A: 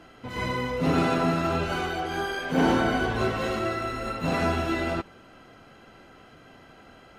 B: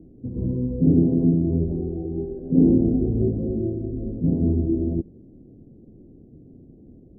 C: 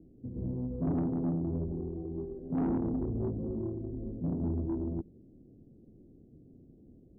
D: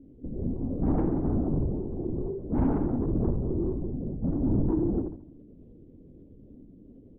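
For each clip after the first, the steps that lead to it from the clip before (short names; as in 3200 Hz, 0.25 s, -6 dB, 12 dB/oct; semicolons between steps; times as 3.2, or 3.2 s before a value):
inverse Chebyshev low-pass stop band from 1200 Hz, stop band 60 dB; gain +8.5 dB
soft clip -17 dBFS, distortion -11 dB; gain -9 dB
on a send: feedback echo 73 ms, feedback 42%, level -5 dB; on the sum: LPC vocoder at 8 kHz whisper; gain +4.5 dB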